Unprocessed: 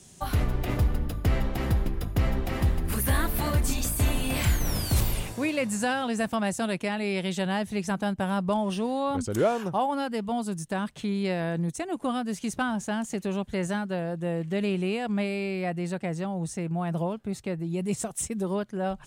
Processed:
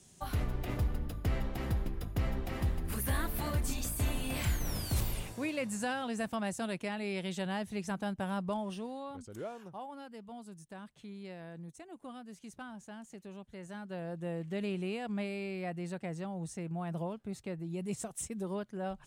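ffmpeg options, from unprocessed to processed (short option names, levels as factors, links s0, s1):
-af "volume=1.19,afade=t=out:st=8.37:d=0.83:silence=0.316228,afade=t=in:st=13.67:d=0.44:silence=0.334965"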